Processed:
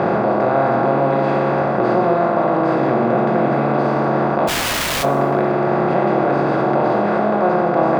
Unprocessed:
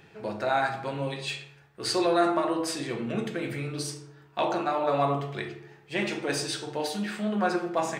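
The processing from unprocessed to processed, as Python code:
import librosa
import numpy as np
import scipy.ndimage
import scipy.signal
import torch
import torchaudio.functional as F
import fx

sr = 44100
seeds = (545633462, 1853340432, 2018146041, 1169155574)

p1 = fx.bin_compress(x, sr, power=0.2)
p2 = scipy.signal.sosfilt(scipy.signal.butter(2, 1100.0, 'lowpass', fs=sr, output='sos'), p1)
p3 = fx.low_shelf(p2, sr, hz=160.0, db=3.5)
p4 = fx.hum_notches(p3, sr, base_hz=50, count=10)
p5 = fx.over_compress(p4, sr, threshold_db=-25.0, ratio=-1.0)
p6 = p4 + (p5 * 10.0 ** (-1.0 / 20.0))
p7 = fx.overflow_wrap(p6, sr, gain_db=16.0, at=(4.47, 5.02), fade=0.02)
p8 = fx.doubler(p7, sr, ms=22.0, db=-10.5)
y = fx.rev_plate(p8, sr, seeds[0], rt60_s=2.4, hf_ratio=0.45, predelay_ms=0, drr_db=14.0)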